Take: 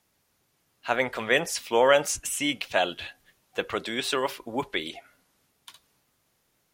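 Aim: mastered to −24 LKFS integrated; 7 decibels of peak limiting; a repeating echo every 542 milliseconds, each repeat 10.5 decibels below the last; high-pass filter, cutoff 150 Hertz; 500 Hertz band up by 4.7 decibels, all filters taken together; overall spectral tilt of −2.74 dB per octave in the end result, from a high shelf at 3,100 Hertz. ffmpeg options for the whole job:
ffmpeg -i in.wav -af "highpass=150,equalizer=frequency=500:width_type=o:gain=5.5,highshelf=frequency=3100:gain=-5.5,alimiter=limit=-11.5dB:level=0:latency=1,aecho=1:1:542|1084|1626:0.299|0.0896|0.0269,volume=2.5dB" out.wav

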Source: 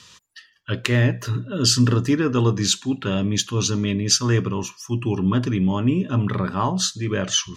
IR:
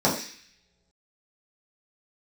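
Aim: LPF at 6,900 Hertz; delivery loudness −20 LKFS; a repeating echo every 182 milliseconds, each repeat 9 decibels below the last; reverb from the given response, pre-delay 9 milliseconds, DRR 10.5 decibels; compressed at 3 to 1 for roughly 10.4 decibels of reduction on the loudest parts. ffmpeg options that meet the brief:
-filter_complex "[0:a]lowpass=6900,acompressor=threshold=-28dB:ratio=3,aecho=1:1:182|364|546|728:0.355|0.124|0.0435|0.0152,asplit=2[link_01][link_02];[1:a]atrim=start_sample=2205,adelay=9[link_03];[link_02][link_03]afir=irnorm=-1:irlink=0,volume=-27dB[link_04];[link_01][link_04]amix=inputs=2:normalize=0,volume=8dB"

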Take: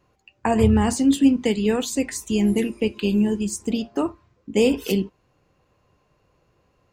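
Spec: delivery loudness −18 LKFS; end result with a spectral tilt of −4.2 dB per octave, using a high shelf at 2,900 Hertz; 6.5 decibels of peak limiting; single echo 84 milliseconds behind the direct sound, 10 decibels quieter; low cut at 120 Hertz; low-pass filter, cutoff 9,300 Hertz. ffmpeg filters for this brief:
ffmpeg -i in.wav -af "highpass=120,lowpass=9300,highshelf=frequency=2900:gain=7,alimiter=limit=-12dB:level=0:latency=1,aecho=1:1:84:0.316,volume=4.5dB" out.wav

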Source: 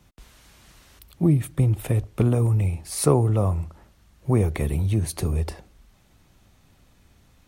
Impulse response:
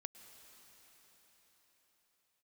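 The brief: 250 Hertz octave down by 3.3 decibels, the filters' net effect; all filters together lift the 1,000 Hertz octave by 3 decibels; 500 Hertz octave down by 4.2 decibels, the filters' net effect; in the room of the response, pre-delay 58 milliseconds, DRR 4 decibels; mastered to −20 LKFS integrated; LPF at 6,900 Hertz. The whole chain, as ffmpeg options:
-filter_complex "[0:a]lowpass=6900,equalizer=frequency=250:width_type=o:gain=-4,equalizer=frequency=500:width_type=o:gain=-5,equalizer=frequency=1000:width_type=o:gain=5.5,asplit=2[link_01][link_02];[1:a]atrim=start_sample=2205,adelay=58[link_03];[link_02][link_03]afir=irnorm=-1:irlink=0,volume=0.5dB[link_04];[link_01][link_04]amix=inputs=2:normalize=0,volume=3.5dB"

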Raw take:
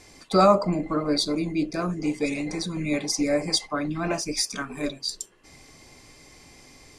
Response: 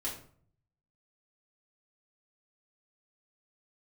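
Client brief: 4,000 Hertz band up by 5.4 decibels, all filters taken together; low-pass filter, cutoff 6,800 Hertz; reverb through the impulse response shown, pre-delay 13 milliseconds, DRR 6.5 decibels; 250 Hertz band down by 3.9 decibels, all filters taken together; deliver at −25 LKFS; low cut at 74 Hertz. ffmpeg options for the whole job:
-filter_complex "[0:a]highpass=74,lowpass=6800,equalizer=frequency=250:width_type=o:gain=-5.5,equalizer=frequency=4000:width_type=o:gain=7.5,asplit=2[link_01][link_02];[1:a]atrim=start_sample=2205,adelay=13[link_03];[link_02][link_03]afir=irnorm=-1:irlink=0,volume=-8.5dB[link_04];[link_01][link_04]amix=inputs=2:normalize=0,volume=-1.5dB"

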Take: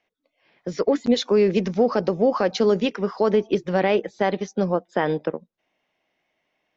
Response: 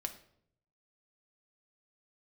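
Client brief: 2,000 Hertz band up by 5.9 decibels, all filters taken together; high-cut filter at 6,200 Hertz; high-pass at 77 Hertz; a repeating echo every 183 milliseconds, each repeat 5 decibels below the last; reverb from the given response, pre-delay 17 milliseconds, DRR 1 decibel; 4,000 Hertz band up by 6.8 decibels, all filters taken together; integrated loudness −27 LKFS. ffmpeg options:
-filter_complex "[0:a]highpass=77,lowpass=6200,equalizer=frequency=2000:width_type=o:gain=5.5,equalizer=frequency=4000:width_type=o:gain=7,aecho=1:1:183|366|549|732|915|1098|1281:0.562|0.315|0.176|0.0988|0.0553|0.031|0.0173,asplit=2[link_01][link_02];[1:a]atrim=start_sample=2205,adelay=17[link_03];[link_02][link_03]afir=irnorm=-1:irlink=0,volume=0dB[link_04];[link_01][link_04]amix=inputs=2:normalize=0,volume=-10dB"

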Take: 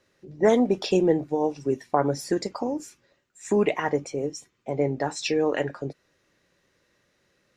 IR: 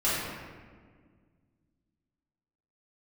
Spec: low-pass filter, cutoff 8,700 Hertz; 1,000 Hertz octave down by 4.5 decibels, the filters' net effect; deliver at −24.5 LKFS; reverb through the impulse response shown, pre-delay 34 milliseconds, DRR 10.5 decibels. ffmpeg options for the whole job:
-filter_complex "[0:a]lowpass=8700,equalizer=frequency=1000:width_type=o:gain=-6.5,asplit=2[link_01][link_02];[1:a]atrim=start_sample=2205,adelay=34[link_03];[link_02][link_03]afir=irnorm=-1:irlink=0,volume=-23dB[link_04];[link_01][link_04]amix=inputs=2:normalize=0,volume=2dB"

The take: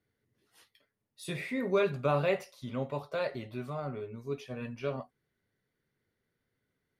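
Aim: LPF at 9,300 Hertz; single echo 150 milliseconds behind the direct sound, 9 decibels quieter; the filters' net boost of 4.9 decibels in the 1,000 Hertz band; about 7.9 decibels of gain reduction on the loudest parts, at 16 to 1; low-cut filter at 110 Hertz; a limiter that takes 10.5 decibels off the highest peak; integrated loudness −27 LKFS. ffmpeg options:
ffmpeg -i in.wav -af "highpass=110,lowpass=9300,equalizer=frequency=1000:width_type=o:gain=6.5,acompressor=threshold=-28dB:ratio=16,alimiter=level_in=5dB:limit=-24dB:level=0:latency=1,volume=-5dB,aecho=1:1:150:0.355,volume=12.5dB" out.wav

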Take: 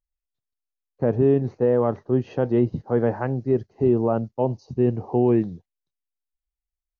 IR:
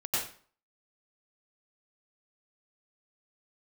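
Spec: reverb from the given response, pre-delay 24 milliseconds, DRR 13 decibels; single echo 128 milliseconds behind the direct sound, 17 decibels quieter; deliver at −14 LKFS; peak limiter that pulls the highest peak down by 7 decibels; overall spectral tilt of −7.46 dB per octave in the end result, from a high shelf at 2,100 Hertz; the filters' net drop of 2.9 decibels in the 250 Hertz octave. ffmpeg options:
-filter_complex "[0:a]equalizer=frequency=250:width_type=o:gain=-4,highshelf=frequency=2100:gain=6,alimiter=limit=-17dB:level=0:latency=1,aecho=1:1:128:0.141,asplit=2[link_01][link_02];[1:a]atrim=start_sample=2205,adelay=24[link_03];[link_02][link_03]afir=irnorm=-1:irlink=0,volume=-20.5dB[link_04];[link_01][link_04]amix=inputs=2:normalize=0,volume=14dB"

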